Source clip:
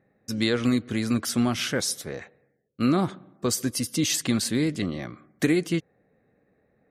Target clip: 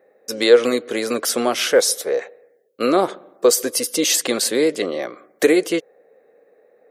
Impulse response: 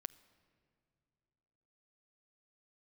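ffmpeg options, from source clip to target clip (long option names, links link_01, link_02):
-af "highpass=frequency=480:width_type=q:width=3.6,highshelf=frequency=11000:gain=7,volume=6.5dB"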